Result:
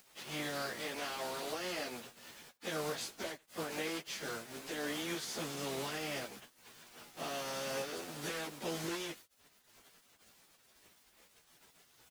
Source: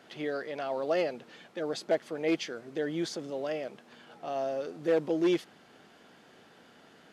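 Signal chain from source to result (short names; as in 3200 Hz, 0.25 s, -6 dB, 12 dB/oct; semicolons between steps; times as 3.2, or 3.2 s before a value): spectral contrast lowered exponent 0.47; compressor 10:1, threshold -31 dBFS, peak gain reduction 11 dB; limiter -27.5 dBFS, peak gain reduction 9 dB; sample gate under -50.5 dBFS; plain phase-vocoder stretch 1.7×; outdoor echo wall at 15 m, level -28 dB; gain +2 dB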